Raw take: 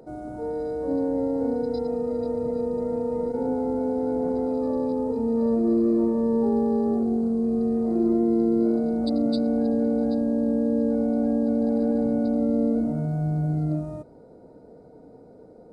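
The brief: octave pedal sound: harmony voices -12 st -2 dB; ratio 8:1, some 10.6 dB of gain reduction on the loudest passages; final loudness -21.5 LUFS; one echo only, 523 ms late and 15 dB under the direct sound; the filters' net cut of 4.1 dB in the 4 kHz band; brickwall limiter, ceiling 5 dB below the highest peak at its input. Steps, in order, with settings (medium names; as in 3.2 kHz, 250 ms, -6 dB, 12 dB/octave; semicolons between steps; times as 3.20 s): peaking EQ 4 kHz -4.5 dB; compression 8:1, threshold -29 dBFS; peak limiter -27 dBFS; delay 523 ms -15 dB; harmony voices -12 st -2 dB; trim +11.5 dB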